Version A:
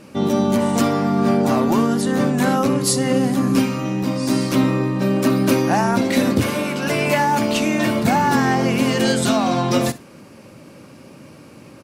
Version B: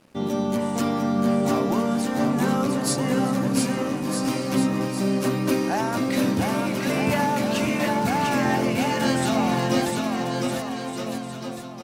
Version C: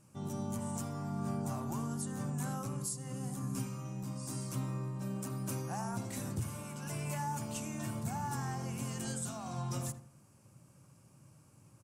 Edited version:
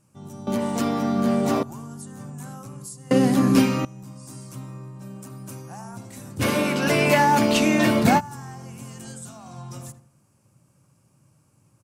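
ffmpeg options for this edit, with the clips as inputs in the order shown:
-filter_complex "[0:a]asplit=2[a][b];[2:a]asplit=4[c][d][e][f];[c]atrim=end=0.472[g];[1:a]atrim=start=0.468:end=1.632[h];[d]atrim=start=1.628:end=3.112[i];[a]atrim=start=3.108:end=3.852[j];[e]atrim=start=3.848:end=6.43[k];[b]atrim=start=6.39:end=8.21[l];[f]atrim=start=8.17[m];[g][h]acrossfade=d=0.004:c1=hsin:c2=hsin[n];[n][i]acrossfade=d=0.004:c1=hsin:c2=hsin[o];[o][j]acrossfade=d=0.004:c1=hsin:c2=hsin[p];[p][k]acrossfade=d=0.004:c1=hsin:c2=hsin[q];[q][l]acrossfade=d=0.04:c1=tri:c2=tri[r];[r][m]acrossfade=d=0.04:c1=tri:c2=tri"

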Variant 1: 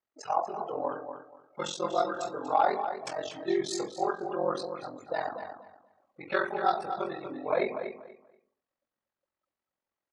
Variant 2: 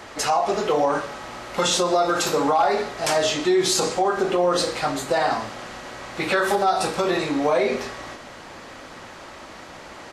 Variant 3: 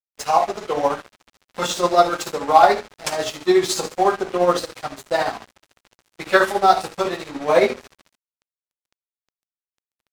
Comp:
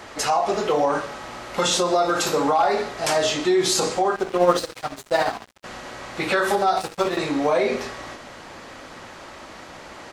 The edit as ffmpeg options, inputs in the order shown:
-filter_complex "[2:a]asplit=2[a][b];[1:a]asplit=3[c][d][e];[c]atrim=end=4.162[f];[a]atrim=start=4.158:end=5.642[g];[d]atrim=start=5.638:end=6.772[h];[b]atrim=start=6.768:end=7.172[i];[e]atrim=start=7.168[j];[f][g]acrossfade=d=0.004:c1=hsin:c2=hsin[k];[k][h]acrossfade=d=0.004:c1=hsin:c2=hsin[l];[l][i]acrossfade=d=0.004:c1=hsin:c2=hsin[m];[m][j]acrossfade=d=0.004:c1=hsin:c2=hsin"

